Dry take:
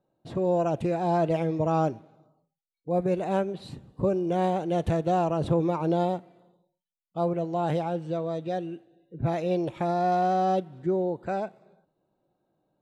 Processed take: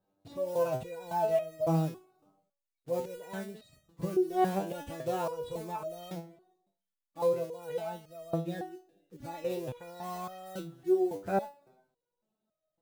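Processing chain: block floating point 5-bit; stepped resonator 3.6 Hz 98–630 Hz; gain +6.5 dB

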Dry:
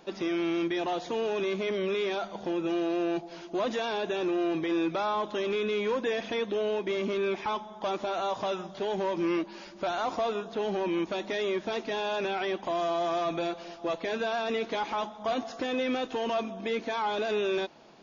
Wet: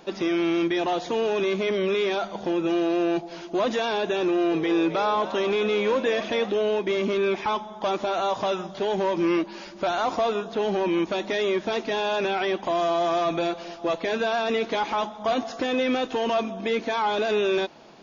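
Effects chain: 4.25–6.52 frequency-shifting echo 0.265 s, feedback 53%, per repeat +110 Hz, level -13.5 dB; gain +5.5 dB

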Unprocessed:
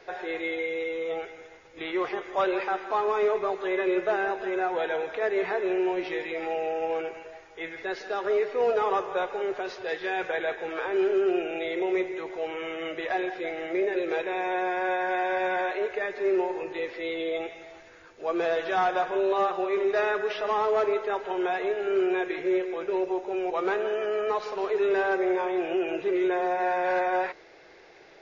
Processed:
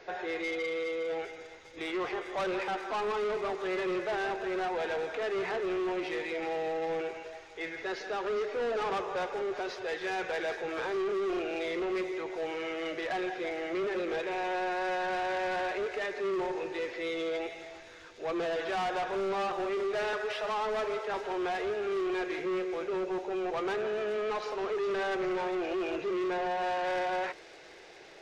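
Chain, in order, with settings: 20.13–21.14 steep high-pass 430 Hz 36 dB/oct; soft clip -29 dBFS, distortion -9 dB; thin delay 0.403 s, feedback 83%, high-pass 5500 Hz, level -6.5 dB

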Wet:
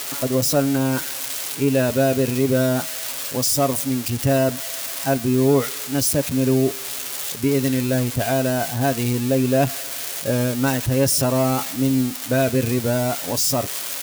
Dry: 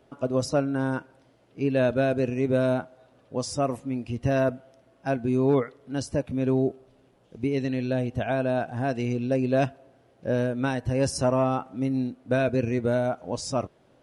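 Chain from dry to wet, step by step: switching spikes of -19.5 dBFS; in parallel at +2.5 dB: limiter -20.5 dBFS, peak gain reduction 7 dB; on the sum: comb 7.2 ms, depth 33%; gain -1.5 dB

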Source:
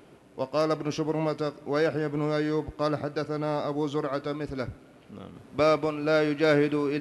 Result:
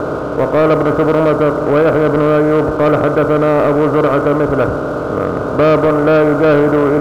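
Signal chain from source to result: per-bin compression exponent 0.4; steep low-pass 1500 Hz 96 dB/oct; sample leveller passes 2; gain +5 dB

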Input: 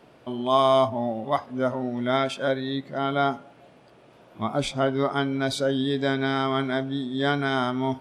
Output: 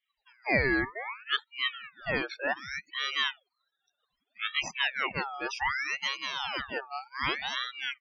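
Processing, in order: reverb removal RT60 1.5 s; loudest bins only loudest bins 32; spectral noise reduction 27 dB; ring modulator with a swept carrier 1800 Hz, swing 45%, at 0.65 Hz; gain -2 dB

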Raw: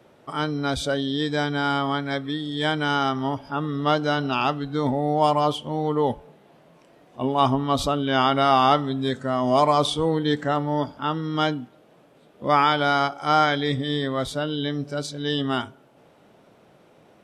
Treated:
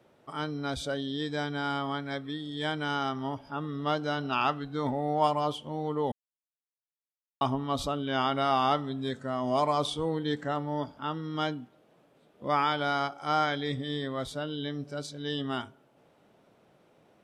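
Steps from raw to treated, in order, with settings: 4.19–5.28 dynamic EQ 1500 Hz, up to +6 dB, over -33 dBFS, Q 0.73; 6.12–7.41 mute; gain -8 dB

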